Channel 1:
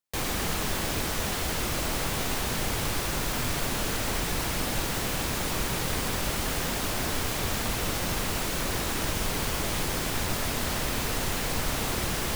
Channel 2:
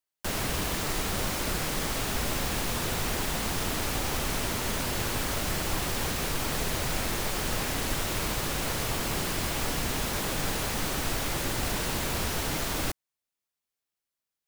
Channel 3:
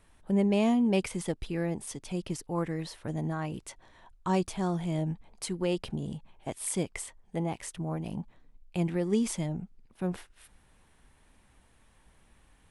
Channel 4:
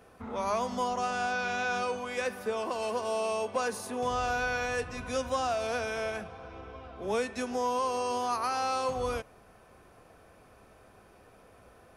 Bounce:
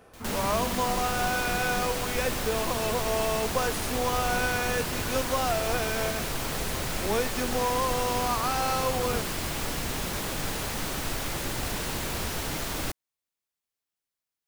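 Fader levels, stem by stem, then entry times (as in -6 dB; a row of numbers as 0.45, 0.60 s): -19.5, -1.5, -15.5, +2.0 dB; 0.00, 0.00, 0.00, 0.00 s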